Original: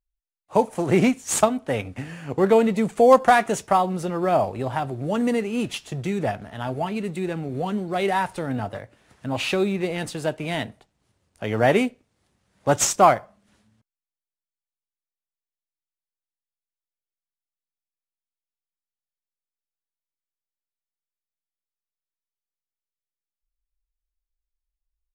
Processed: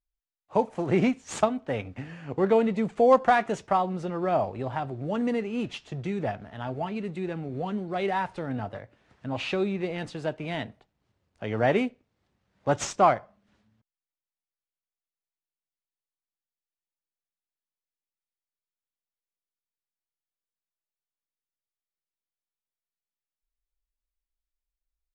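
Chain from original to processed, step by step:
high-frequency loss of the air 110 metres
level −4.5 dB

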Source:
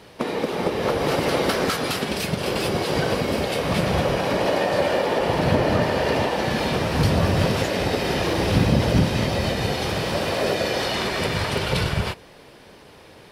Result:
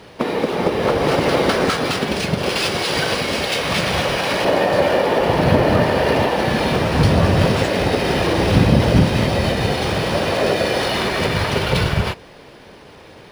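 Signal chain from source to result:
0:02.49–0:04.45: tilt shelving filter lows −6.5 dB, about 1,200 Hz
linearly interpolated sample-rate reduction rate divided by 3×
level +5 dB

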